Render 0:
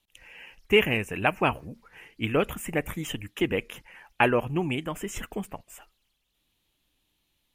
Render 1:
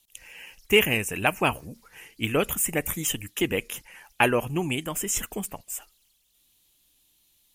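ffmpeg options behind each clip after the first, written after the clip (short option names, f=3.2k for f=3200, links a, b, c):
-af "bass=f=250:g=0,treble=f=4k:g=15"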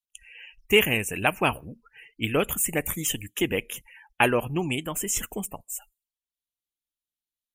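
-af "afftdn=nr=30:nf=-46"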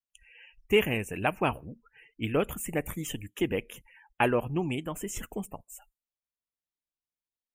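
-af "highshelf=f=2.3k:g=-11,volume=-2dB"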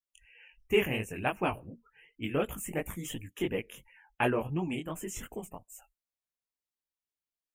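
-af "flanger=delay=16.5:depth=6.8:speed=2.8"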